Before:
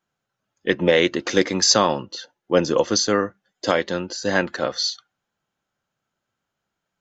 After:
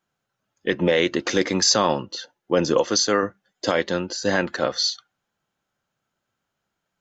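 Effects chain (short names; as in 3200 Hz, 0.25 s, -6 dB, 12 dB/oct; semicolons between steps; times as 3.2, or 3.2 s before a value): 2.79–3.23 low shelf 220 Hz -9 dB; limiter -8.5 dBFS, peak gain reduction 5 dB; gain +1 dB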